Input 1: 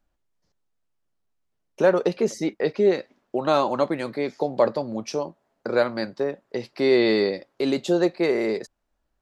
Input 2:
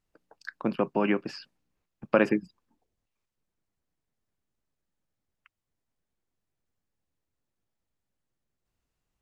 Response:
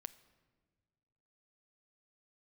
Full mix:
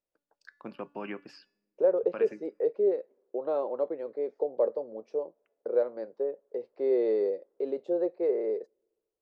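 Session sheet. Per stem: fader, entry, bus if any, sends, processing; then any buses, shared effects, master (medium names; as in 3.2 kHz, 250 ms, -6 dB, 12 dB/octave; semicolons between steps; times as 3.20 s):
-3.5 dB, 0.00 s, send -19 dB, band-pass filter 470 Hz, Q 4.4
-15.0 dB, 0.00 s, send -12 dB, de-hum 287.5 Hz, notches 34; auto duck -7 dB, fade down 0.40 s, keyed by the first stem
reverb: on, RT60 1.7 s, pre-delay 7 ms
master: bass shelf 220 Hz -8.5 dB; level rider gain up to 3.5 dB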